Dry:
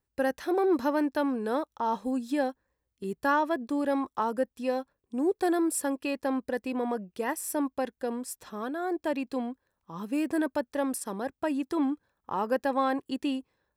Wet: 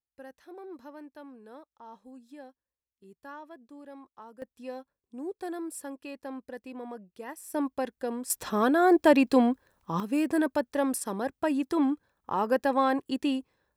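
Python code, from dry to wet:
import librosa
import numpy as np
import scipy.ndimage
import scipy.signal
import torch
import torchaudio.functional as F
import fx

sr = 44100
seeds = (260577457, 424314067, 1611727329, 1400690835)

y = fx.gain(x, sr, db=fx.steps((0.0, -19.0), (4.42, -10.0), (7.54, -0.5), (8.3, 10.5), (10.0, 2.0)))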